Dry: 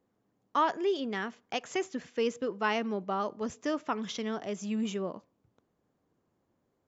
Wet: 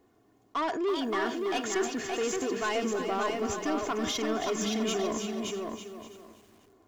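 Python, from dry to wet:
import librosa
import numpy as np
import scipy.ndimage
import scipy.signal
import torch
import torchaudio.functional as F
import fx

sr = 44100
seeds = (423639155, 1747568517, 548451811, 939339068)

p1 = x + 0.64 * np.pad(x, (int(2.8 * sr / 1000.0), 0))[:len(x)]
p2 = fx.over_compress(p1, sr, threshold_db=-40.0, ratio=-1.0)
p3 = p1 + F.gain(torch.from_numpy(p2), -1.0).numpy()
p4 = 10.0 ** (-25.0 / 20.0) * np.tanh(p3 / 10.0 ** (-25.0 / 20.0))
p5 = fx.echo_feedback(p4, sr, ms=572, feedback_pct=16, wet_db=-4.0)
y = fx.echo_crushed(p5, sr, ms=329, feedback_pct=35, bits=9, wet_db=-8.0)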